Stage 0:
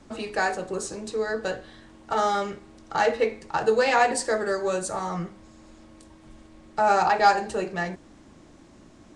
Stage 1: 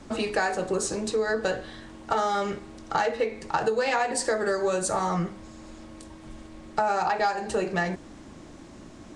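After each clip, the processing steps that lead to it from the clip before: compression 10:1, threshold -27 dBFS, peak gain reduction 14.5 dB; trim +5.5 dB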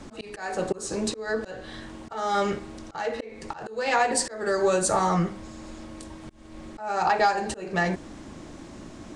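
slow attack 311 ms; trim +3.5 dB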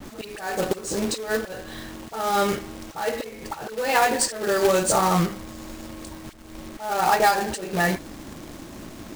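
phase dispersion highs, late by 42 ms, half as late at 1.3 kHz; companded quantiser 4-bit; trim +2.5 dB

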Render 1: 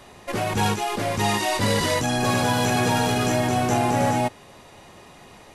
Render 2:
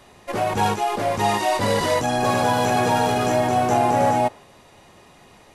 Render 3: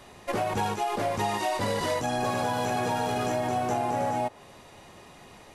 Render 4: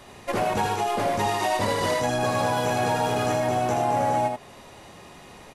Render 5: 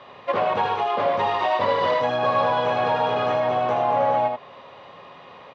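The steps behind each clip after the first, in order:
dynamic bell 710 Hz, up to +8 dB, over -36 dBFS, Q 0.71; trim -3 dB
compression, threshold -25 dBFS, peak gain reduction 10 dB
delay 80 ms -4 dB; trim +2.5 dB
cabinet simulation 150–3800 Hz, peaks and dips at 210 Hz -6 dB, 330 Hz -7 dB, 540 Hz +7 dB, 1.1 kHz +9 dB, 3.3 kHz +3 dB

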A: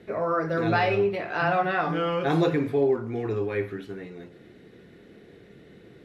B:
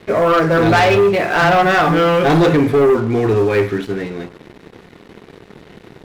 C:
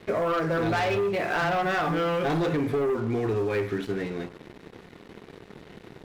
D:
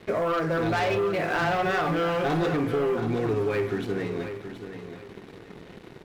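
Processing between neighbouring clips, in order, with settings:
waveshaping leveller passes 3; trim +4 dB
compression, threshold -18 dBFS, peak gain reduction 8 dB; trim -6 dB
feedback delay 726 ms, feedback 29%, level -10 dB

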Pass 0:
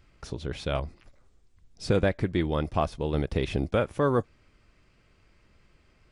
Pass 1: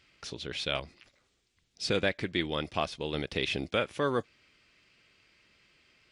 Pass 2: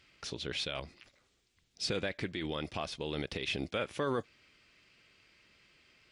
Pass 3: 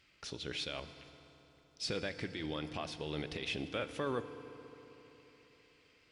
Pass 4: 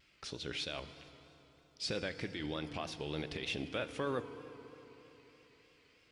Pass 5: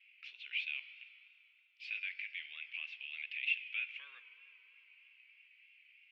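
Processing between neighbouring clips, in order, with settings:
frequency weighting D; trim -4.5 dB
peak limiter -24 dBFS, peak gain reduction 10.5 dB
FDN reverb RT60 3.8 s, high-frequency decay 0.65×, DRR 10.5 dB; trim -3.5 dB
vibrato 3.2 Hz 79 cents
Butterworth band-pass 2.5 kHz, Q 3.8; trim +9 dB

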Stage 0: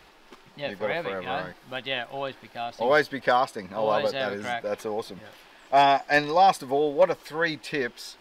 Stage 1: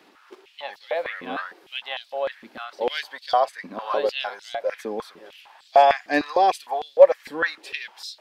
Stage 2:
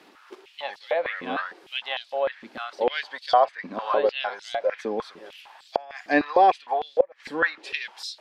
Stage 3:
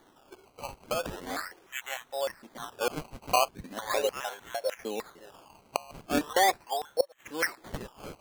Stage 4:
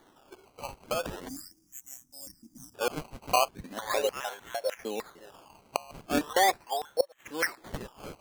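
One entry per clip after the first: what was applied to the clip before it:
step-sequenced high-pass 6.6 Hz 260–4100 Hz; trim -3 dB
inverted gate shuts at -7 dBFS, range -30 dB; low-pass that closes with the level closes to 2.8 kHz, closed at -22 dBFS; trim +1.5 dB
decimation with a swept rate 17×, swing 100% 0.39 Hz; trim -6.5 dB
time-frequency box 1.28–2.75 s, 340–4700 Hz -28 dB

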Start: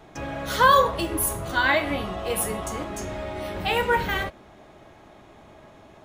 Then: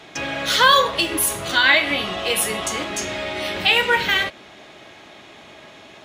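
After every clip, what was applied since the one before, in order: frequency weighting D; in parallel at -1 dB: compression, threshold -25 dBFS, peak gain reduction 14.5 dB; on the sum: trim -1 dB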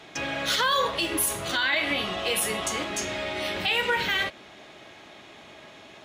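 peak limiter -10.5 dBFS, peak gain reduction 9 dB; trim -4 dB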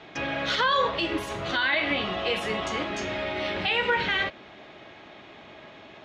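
distance through air 180 m; trim +2 dB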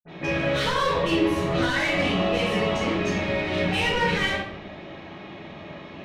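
phase dispersion highs, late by 42 ms, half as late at 2.5 kHz; saturation -25 dBFS, distortion -11 dB; reverberation RT60 0.75 s, pre-delay 46 ms; trim +8.5 dB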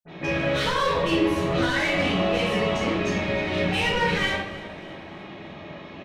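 feedback delay 307 ms, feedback 51%, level -18 dB

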